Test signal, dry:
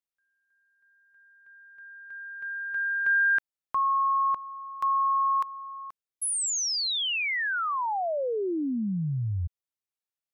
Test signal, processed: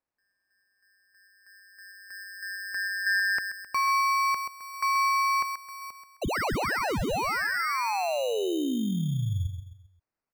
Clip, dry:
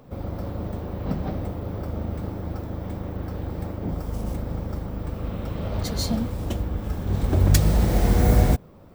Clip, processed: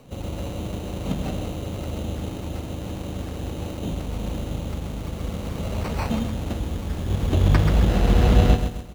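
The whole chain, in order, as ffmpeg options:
-filter_complex "[0:a]aecho=1:1:131|262|393|524:0.398|0.151|0.0575|0.0218,acrusher=samples=13:mix=1:aa=0.000001,acrossover=split=5000[a][b];[b]acompressor=threshold=-41dB:ratio=4:attack=1:release=60[c];[a][c]amix=inputs=2:normalize=0"

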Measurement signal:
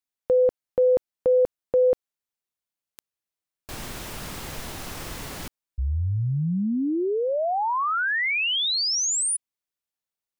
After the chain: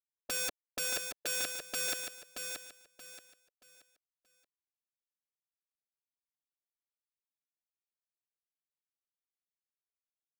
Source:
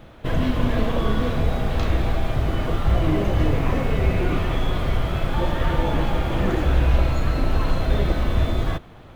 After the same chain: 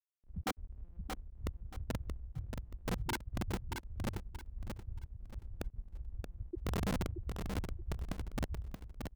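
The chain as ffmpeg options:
-af "afftfilt=real='re*gte(hypot(re,im),1)':imag='im*gte(hypot(re,im),1)':win_size=1024:overlap=0.75,crystalizer=i=0.5:c=0,lowpass=f=3.5k:w=0.5412,lowpass=f=3.5k:w=1.3066,adynamicequalizer=threshold=0.0126:dfrequency=960:dqfactor=1.5:tfrequency=960:tqfactor=1.5:attack=5:release=100:ratio=0.375:range=2.5:mode=cutabove:tftype=bell,highpass=f=520:p=1,aeval=exprs='(mod(44.7*val(0)+1,2)-1)/44.7':c=same,aecho=1:1:628|1256|1884|2512:0.501|0.145|0.0421|0.0122,volume=3dB"

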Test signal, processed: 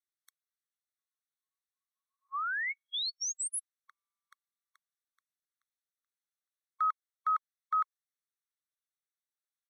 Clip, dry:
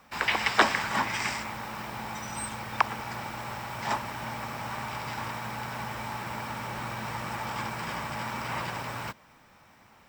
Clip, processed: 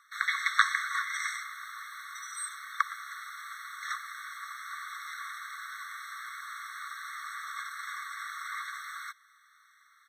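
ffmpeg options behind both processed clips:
-af "aresample=32000,aresample=44100,afftfilt=real='re*eq(mod(floor(b*sr/1024/1100),2),1)':imag='im*eq(mod(floor(b*sr/1024/1100),2),1)':win_size=1024:overlap=0.75"

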